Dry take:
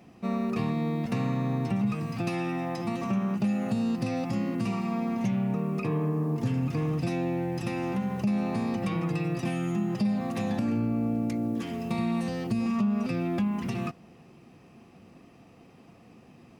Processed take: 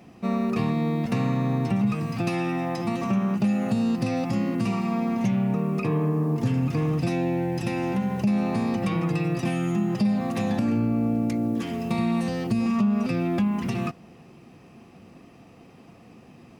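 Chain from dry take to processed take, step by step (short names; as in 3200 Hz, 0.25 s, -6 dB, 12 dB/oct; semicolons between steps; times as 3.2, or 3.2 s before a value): 7.12–8.29 notch 1200 Hz, Q 9.2; gain +4 dB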